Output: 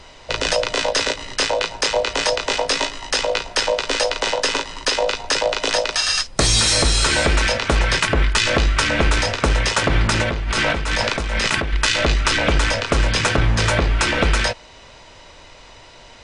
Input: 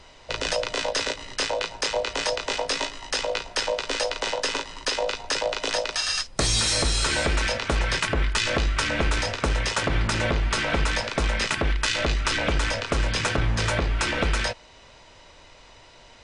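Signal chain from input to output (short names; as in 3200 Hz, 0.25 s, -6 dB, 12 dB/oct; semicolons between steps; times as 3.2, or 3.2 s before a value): 10.22–11.73 negative-ratio compressor -27 dBFS, ratio -1; gain +6.5 dB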